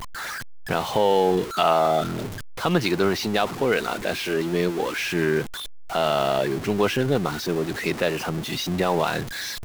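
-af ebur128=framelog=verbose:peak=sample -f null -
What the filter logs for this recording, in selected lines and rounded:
Integrated loudness:
  I:         -23.7 LUFS
  Threshold: -33.9 LUFS
Loudness range:
  LRA:         2.2 LU
  Threshold: -43.8 LUFS
  LRA low:   -24.5 LUFS
  LRA high:  -22.3 LUFS
Sample peak:
  Peak:       -6.3 dBFS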